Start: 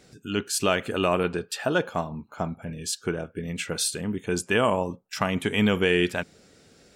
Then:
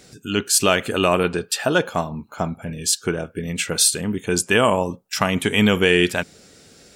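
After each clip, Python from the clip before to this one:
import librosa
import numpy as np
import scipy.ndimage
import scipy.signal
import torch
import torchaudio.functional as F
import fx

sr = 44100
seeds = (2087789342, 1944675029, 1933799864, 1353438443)

y = fx.high_shelf(x, sr, hz=4000.0, db=7.0)
y = y * 10.0 ** (5.0 / 20.0)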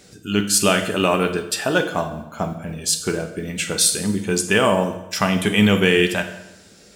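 y = fx.mod_noise(x, sr, seeds[0], snr_db=35)
y = fx.rev_fdn(y, sr, rt60_s=0.93, lf_ratio=0.95, hf_ratio=0.85, size_ms=30.0, drr_db=5.5)
y = y * 10.0 ** (-1.0 / 20.0)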